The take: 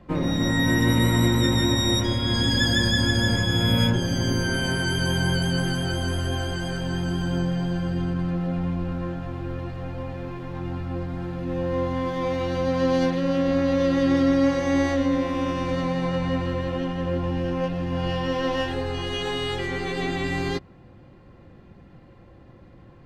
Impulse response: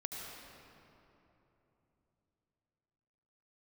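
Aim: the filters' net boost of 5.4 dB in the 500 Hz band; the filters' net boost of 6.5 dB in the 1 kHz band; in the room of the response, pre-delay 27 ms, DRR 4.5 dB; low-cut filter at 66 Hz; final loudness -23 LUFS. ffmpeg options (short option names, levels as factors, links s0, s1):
-filter_complex "[0:a]highpass=66,equalizer=f=500:t=o:g=4.5,equalizer=f=1000:t=o:g=6.5,asplit=2[s0][s1];[1:a]atrim=start_sample=2205,adelay=27[s2];[s1][s2]afir=irnorm=-1:irlink=0,volume=0.562[s3];[s0][s3]amix=inputs=2:normalize=0,volume=0.708"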